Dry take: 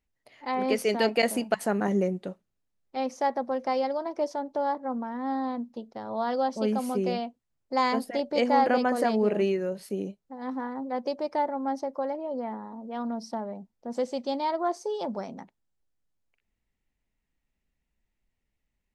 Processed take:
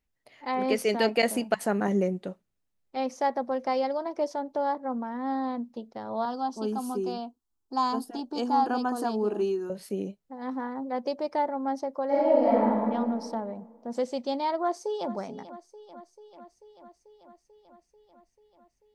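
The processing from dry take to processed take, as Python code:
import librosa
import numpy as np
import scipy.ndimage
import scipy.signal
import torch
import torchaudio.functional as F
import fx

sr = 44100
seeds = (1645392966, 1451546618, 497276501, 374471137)

y = fx.fixed_phaser(x, sr, hz=560.0, stages=6, at=(6.25, 9.7))
y = fx.reverb_throw(y, sr, start_s=12.07, length_s=0.84, rt60_s=1.8, drr_db=-11.0)
y = fx.echo_throw(y, sr, start_s=14.61, length_s=0.51, ms=440, feedback_pct=75, wet_db=-15.0)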